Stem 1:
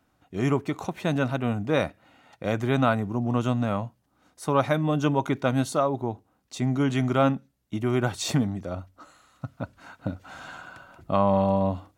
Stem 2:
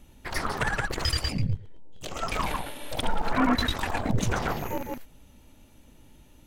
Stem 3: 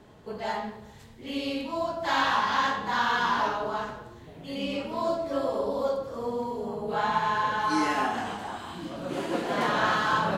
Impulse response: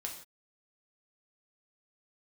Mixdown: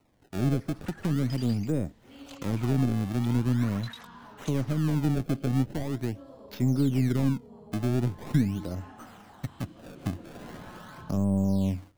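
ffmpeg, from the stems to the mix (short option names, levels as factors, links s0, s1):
-filter_complex "[0:a]aeval=exprs='if(lt(val(0),0),0.708*val(0),val(0))':c=same,acrossover=split=420[s0][s1];[s1]acompressor=threshold=0.00355:ratio=2[s2];[s0][s2]amix=inputs=2:normalize=0,acrusher=samples=26:mix=1:aa=0.000001:lfo=1:lforange=41.6:lforate=0.42,volume=1.26,asplit=2[s3][s4];[1:a]highpass=1000,dynaudnorm=f=120:g=17:m=4.47,adelay=250,volume=0.106[s5];[2:a]acrossover=split=240[s6][s7];[s7]acompressor=threshold=0.00562:ratio=2.5[s8];[s6][s8]amix=inputs=2:normalize=0,adelay=850,volume=0.316[s9];[s4]apad=whole_len=296337[s10];[s5][s10]sidechaingate=range=0.0224:threshold=0.002:ratio=16:detection=peak[s11];[s3][s11][s9]amix=inputs=3:normalize=0,acrossover=split=430[s12][s13];[s13]acompressor=threshold=0.01:ratio=5[s14];[s12][s14]amix=inputs=2:normalize=0"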